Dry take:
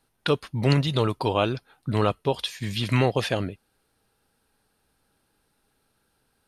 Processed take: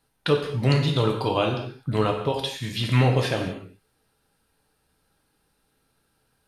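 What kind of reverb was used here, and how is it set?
gated-style reverb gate 270 ms falling, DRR 1.5 dB; trim -1.5 dB

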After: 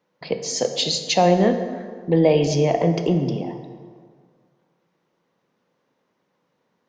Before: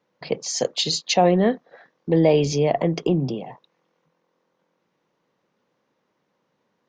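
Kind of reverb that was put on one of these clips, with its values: plate-style reverb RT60 1.9 s, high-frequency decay 0.6×, DRR 6.5 dB

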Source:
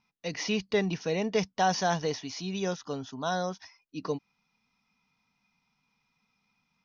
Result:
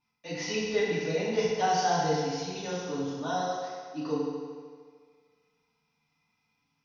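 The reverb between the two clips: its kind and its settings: FDN reverb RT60 1.8 s, low-frequency decay 0.8×, high-frequency decay 0.85×, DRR -9.5 dB; trim -10 dB

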